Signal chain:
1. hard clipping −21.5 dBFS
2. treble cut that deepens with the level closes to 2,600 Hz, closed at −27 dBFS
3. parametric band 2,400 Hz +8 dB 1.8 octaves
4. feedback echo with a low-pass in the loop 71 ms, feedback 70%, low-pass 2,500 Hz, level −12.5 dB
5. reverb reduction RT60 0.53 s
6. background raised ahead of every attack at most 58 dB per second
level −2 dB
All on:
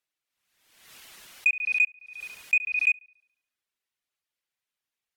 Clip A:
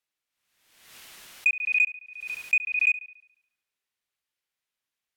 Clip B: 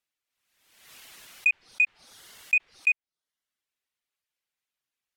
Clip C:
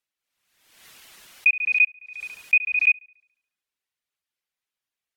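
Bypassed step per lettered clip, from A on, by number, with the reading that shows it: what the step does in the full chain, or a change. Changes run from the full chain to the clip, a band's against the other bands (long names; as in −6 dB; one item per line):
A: 5, change in momentary loudness spread −4 LU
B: 4, change in momentary loudness spread −16 LU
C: 1, distortion level −12 dB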